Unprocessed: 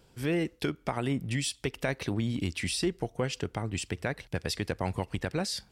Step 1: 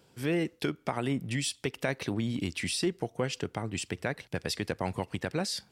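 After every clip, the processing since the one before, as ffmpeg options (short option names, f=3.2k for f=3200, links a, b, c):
-af "highpass=110"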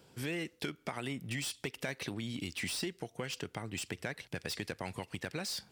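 -filter_complex "[0:a]acrossover=split=1700[a][b];[a]acompressor=threshold=-39dB:ratio=4[c];[b]asoftclip=type=tanh:threshold=-36dB[d];[c][d]amix=inputs=2:normalize=0,volume=1dB"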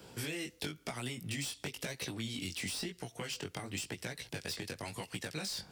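-filter_complex "[0:a]acrossover=split=130|970|3600[a][b][c][d];[a]acompressor=threshold=-58dB:ratio=4[e];[b]acompressor=threshold=-51dB:ratio=4[f];[c]acompressor=threshold=-56dB:ratio=4[g];[d]acompressor=threshold=-49dB:ratio=4[h];[e][f][g][h]amix=inputs=4:normalize=0,flanger=delay=16:depth=5.8:speed=0.98,volume=11dB"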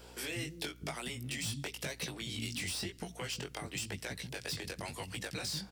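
-filter_complex "[0:a]acrossover=split=270[a][b];[a]adelay=190[c];[c][b]amix=inputs=2:normalize=0,aeval=exprs='val(0)+0.00141*(sin(2*PI*60*n/s)+sin(2*PI*2*60*n/s)/2+sin(2*PI*3*60*n/s)/3+sin(2*PI*4*60*n/s)/4+sin(2*PI*5*60*n/s)/5)':c=same,volume=1dB"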